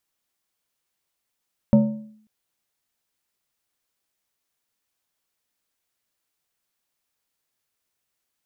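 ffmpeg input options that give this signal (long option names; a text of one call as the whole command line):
ffmpeg -f lavfi -i "aevalsrc='0.376*pow(10,-3*t/0.62)*sin(2*PI*215*t+0.68*clip(1-t/0.47,0,1)*sin(2*PI*1.64*215*t))':duration=0.54:sample_rate=44100" out.wav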